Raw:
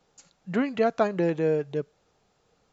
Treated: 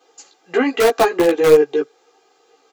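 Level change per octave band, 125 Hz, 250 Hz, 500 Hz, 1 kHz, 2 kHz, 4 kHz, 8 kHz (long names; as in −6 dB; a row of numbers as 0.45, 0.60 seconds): −2.5 dB, +6.5 dB, +12.0 dB, +10.5 dB, +12.0 dB, +17.0 dB, can't be measured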